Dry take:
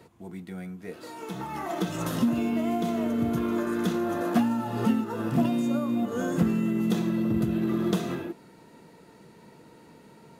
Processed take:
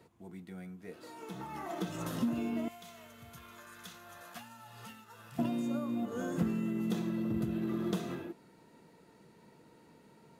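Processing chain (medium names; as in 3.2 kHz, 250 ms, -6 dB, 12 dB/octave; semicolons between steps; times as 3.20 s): 2.68–5.39 s: amplifier tone stack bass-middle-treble 10-0-10; trim -8 dB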